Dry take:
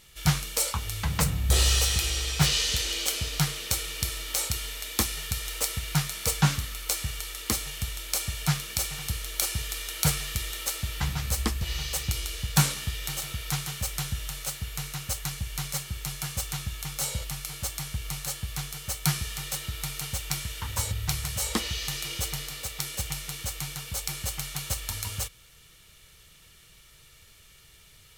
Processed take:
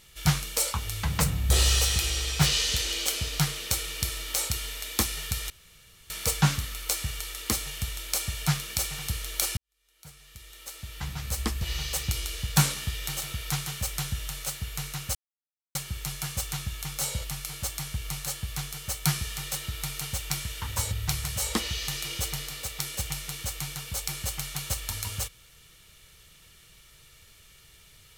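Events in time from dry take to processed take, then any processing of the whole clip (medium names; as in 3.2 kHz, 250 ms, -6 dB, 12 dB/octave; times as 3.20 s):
5.50–6.10 s: room tone
9.57–11.67 s: fade in quadratic
15.15–15.75 s: mute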